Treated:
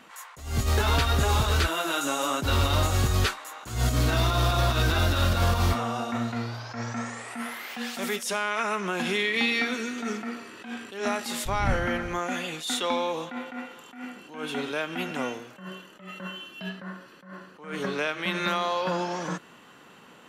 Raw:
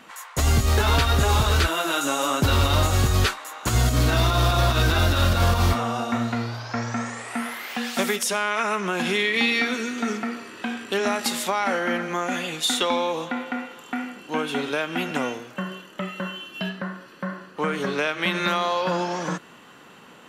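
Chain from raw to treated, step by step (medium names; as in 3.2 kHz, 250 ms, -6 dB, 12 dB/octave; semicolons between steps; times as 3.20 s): 11.45–12.17 s: wind noise 100 Hz -22 dBFS; attacks held to a fixed rise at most 110 dB/s; trim -3.5 dB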